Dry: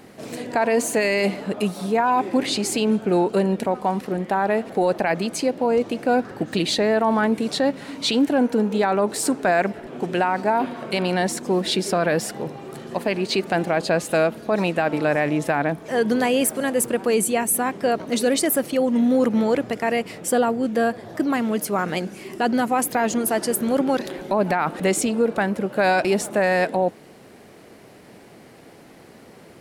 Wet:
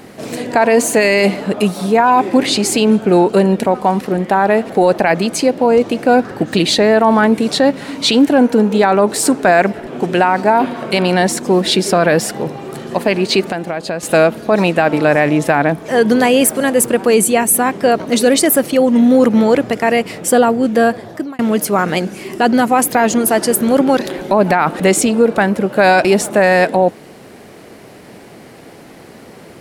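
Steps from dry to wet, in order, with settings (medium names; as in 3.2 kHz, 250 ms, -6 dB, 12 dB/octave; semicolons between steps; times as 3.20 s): 13.47–14.03 s: compression 4:1, threshold -28 dBFS, peak gain reduction 10.5 dB; 20.95–21.39 s: fade out linear; trim +8.5 dB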